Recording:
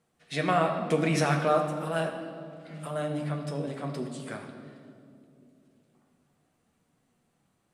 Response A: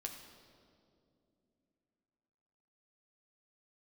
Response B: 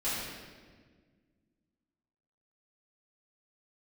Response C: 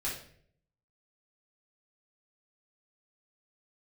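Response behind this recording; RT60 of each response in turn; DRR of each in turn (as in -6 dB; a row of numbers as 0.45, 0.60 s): A; 2.6, 1.6, 0.60 s; 2.0, -13.0, -7.5 dB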